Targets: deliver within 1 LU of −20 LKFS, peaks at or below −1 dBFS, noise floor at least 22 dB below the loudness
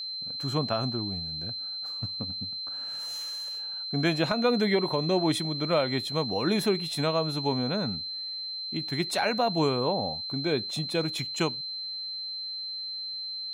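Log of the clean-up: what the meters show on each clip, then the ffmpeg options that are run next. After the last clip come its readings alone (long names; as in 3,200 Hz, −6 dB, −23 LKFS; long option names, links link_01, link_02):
interfering tone 4,100 Hz; level of the tone −33 dBFS; integrated loudness −28.5 LKFS; sample peak −13.5 dBFS; target loudness −20.0 LKFS
→ -af "bandreject=frequency=4100:width=30"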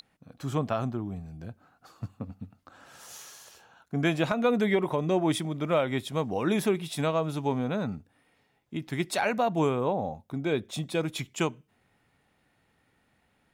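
interfering tone none found; integrated loudness −29.0 LKFS; sample peak −14.5 dBFS; target loudness −20.0 LKFS
→ -af "volume=9dB"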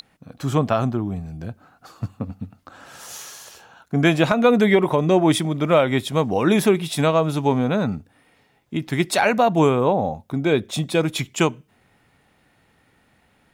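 integrated loudness −20.0 LKFS; sample peak −5.5 dBFS; background noise floor −61 dBFS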